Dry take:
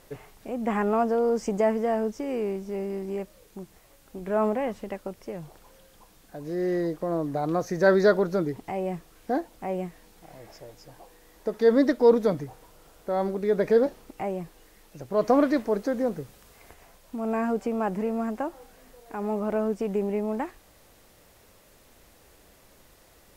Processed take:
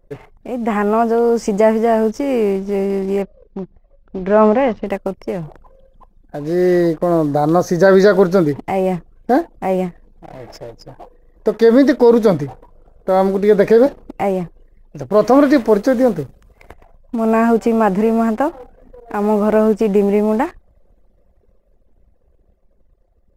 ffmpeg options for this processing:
-filter_complex "[0:a]asettb=1/sr,asplit=3[a][b][c];[a]atrim=end=3.224[d];[b]atrim=start=3.22:end=4.86,asetpts=PTS-STARTPTS,afade=t=in:d=0.004:c=qsin,afade=t=out:st=1.636:d=0.004:c=qsin,lowpass=f=5.9k:w=0.5412,lowpass=f=5.9k:w=1.3066[e];[c]atrim=start=4.856[f];[d][e]acrossfade=d=0.004:c1=hsin:c2=qsin[g];[g][f]acrossfade=d=0.004:c1=qsin:c2=hsin,asettb=1/sr,asplit=3[h][i][j];[h]atrim=end=7.264[k];[i]atrim=start=7.26:end=7.88,asetpts=PTS-STARTPTS,afade=t=in:d=0.004:c=qsin,afade=t=out:st=0.616:d=0.004:c=qsin,equalizer=f=2.4k:t=o:w=0.77:g=-8[l];[j]atrim=start=7.876[m];[k][l]acrossfade=d=0.004:c1=hsin:c2=qsin[n];[n][m]acrossfade=d=0.004:c1=qsin:c2=hsin,anlmdn=0.00631,dynaudnorm=f=120:g=31:m=5dB,alimiter=level_in=9.5dB:limit=-1dB:release=50:level=0:latency=1,volume=-1dB"

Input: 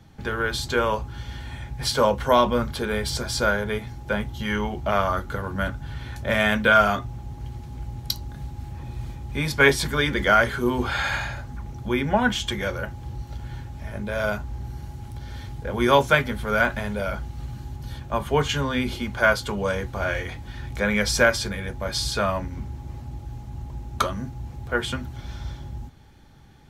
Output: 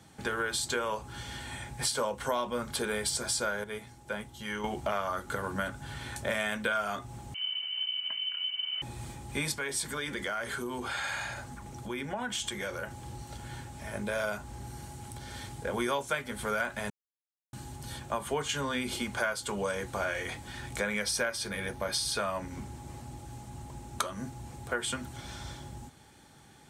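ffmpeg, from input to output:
-filter_complex "[0:a]asettb=1/sr,asplit=3[a][b][c];[a]atrim=end=7.344[d];[b]atrim=start=7.34:end=8.82,asetpts=PTS-STARTPTS,afade=t=in:d=0.004:c=qsin,afade=t=out:st=1.476:d=0.004:c=qsin,lowpass=f=2.6k:t=q:w=0.5098,lowpass=f=2.6k:t=q:w=0.6013,lowpass=f=2.6k:t=q:w=0.9,lowpass=f=2.6k:t=q:w=2.563,afreqshift=-3100[e];[c]atrim=start=8.816[f];[d][e]acrossfade=d=0.004:c1=hsin:c2=qsin[g];[g][f]acrossfade=d=0.004:c1=qsin:c2=hsin,asettb=1/sr,asplit=3[h][i][j];[h]atrim=end=9.534[k];[i]atrim=start=9.53:end=12.91,asetpts=PTS-STARTPTS,afade=t=in:d=0.004:c=qsin,afade=t=out:st=3.376:d=0.004:c=qsin,acompressor=threshold=-31dB:ratio=4:attack=3.2:release=140:knee=1:detection=peak[l];[j]atrim=start=12.906[m];[k][l]acrossfade=d=0.004:c1=hsin:c2=qsin[n];[n][m]acrossfade=d=0.004:c1=qsin:c2=hsin,asettb=1/sr,asplit=3[o][p][q];[o]atrim=end=21.044[r];[p]atrim=start=21.04:end=22.19,asetpts=PTS-STARTPTS,afade=t=in:d=0.004:c=qsin,afade=t=out:st=1.146:d=0.004:c=qsin,equalizer=f=7.5k:w=6.8:g=-14.5[s];[q]atrim=start=22.186[t];[r][s]acrossfade=d=0.004:c1=hsin:c2=qsin[u];[u][t]acrossfade=d=0.004:c1=qsin:c2=hsin,asplit=5[v][w][x][y][z];[v]atrim=end=3.642[aa];[w]atrim=start=3.638:end=4.642,asetpts=PTS-STARTPTS,volume=-8.5dB[ab];[x]atrim=start=4.638:end=16.9,asetpts=PTS-STARTPTS,afade=t=out:st=12.258:d=0.004:c=hsin[ac];[y]atrim=start=16.9:end=17.53,asetpts=PTS-STARTPTS,volume=0[ad];[z]atrim=start=17.53,asetpts=PTS-STARTPTS,afade=t=in:d=0.004:c=hsin[ae];[aa][ab]acrossfade=d=0.004:c1=hsin:c2=hsin[af];[ac][ad][ae]concat=n=3:v=0:a=1[ag];[af][ag]acrossfade=d=0.004:c1=hsin:c2=hsin,highpass=f=270:p=1,equalizer=f=8.5k:w=1.9:g=13,acompressor=threshold=-29dB:ratio=5"

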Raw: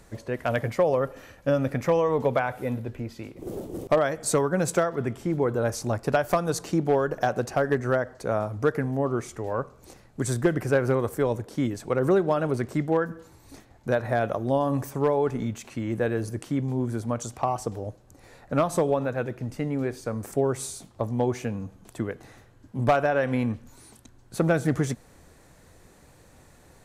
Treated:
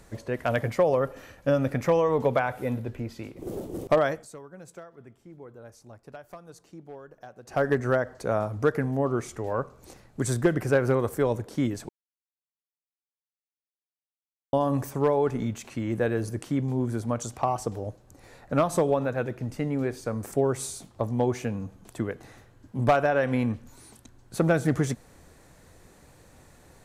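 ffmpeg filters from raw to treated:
-filter_complex "[0:a]asplit=5[a][b][c][d][e];[a]atrim=end=4.27,asetpts=PTS-STARTPTS,afade=t=out:st=4.11:d=0.16:silence=0.0891251[f];[b]atrim=start=4.27:end=7.45,asetpts=PTS-STARTPTS,volume=-21dB[g];[c]atrim=start=7.45:end=11.89,asetpts=PTS-STARTPTS,afade=t=in:d=0.16:silence=0.0891251,afade=t=out:st=4.436:d=0.004:c=hsin[h];[d]atrim=start=11.89:end=14.53,asetpts=PTS-STARTPTS,volume=0[i];[e]atrim=start=14.53,asetpts=PTS-STARTPTS,afade=t=in:d=0.004:c=hsin[j];[f][g][h][i][j]concat=n=5:v=0:a=1"

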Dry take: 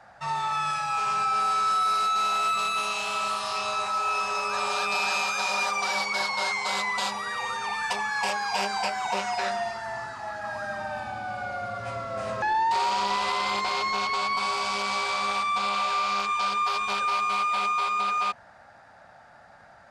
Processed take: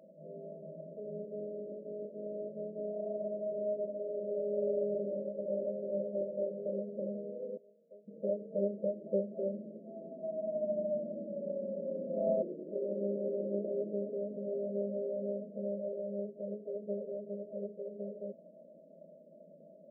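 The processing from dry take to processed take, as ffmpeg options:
-filter_complex "[0:a]asettb=1/sr,asplit=3[a][b][c];[a]atrim=end=4.394[d];[b]atrim=start=4.39:end=6.66,asetpts=PTS-STARTPTS,afade=t=in:d=0.004:c=qsin,afade=t=out:st=2.266:d=0.004:c=qsin,aecho=1:1:116:0.299,atrim=end_sample=100107[e];[c]atrim=start=6.656[f];[d][e]acrossfade=d=0.004:c1=hsin:c2=qsin[g];[g][f]acrossfade=d=0.004:c1=qsin:c2=hsin,asettb=1/sr,asplit=3[h][i][j];[h]atrim=end=7.574[k];[i]atrim=start=7.57:end=8.08,asetpts=PTS-STARTPTS,afade=t=in:d=0.004:c=qsin,afade=t=out:st=0.506:d=0.004:c=qsin,bandpass=f=2.7k:t=q:w=1.4[l];[j]atrim=start=8.076[m];[k][l]acrossfade=d=0.004:c1=hsin:c2=qsin[n];[n][m]acrossfade=d=0.004:c1=qsin:c2=hsin,afftfilt=real='re*between(b*sr/4096,160,660)':imag='im*between(b*sr/4096,160,660)':win_size=4096:overlap=0.75,volume=4dB"

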